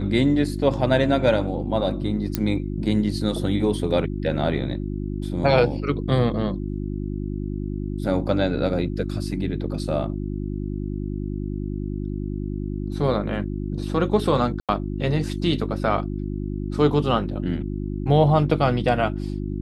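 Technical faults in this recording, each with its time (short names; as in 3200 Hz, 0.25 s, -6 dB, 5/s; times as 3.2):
hum 50 Hz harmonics 7 -28 dBFS
2.35 pop -7 dBFS
14.6–14.69 gap 87 ms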